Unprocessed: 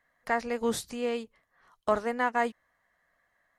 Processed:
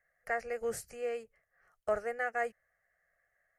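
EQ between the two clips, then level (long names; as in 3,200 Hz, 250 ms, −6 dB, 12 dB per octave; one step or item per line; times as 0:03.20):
phaser with its sweep stopped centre 990 Hz, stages 6
−3.5 dB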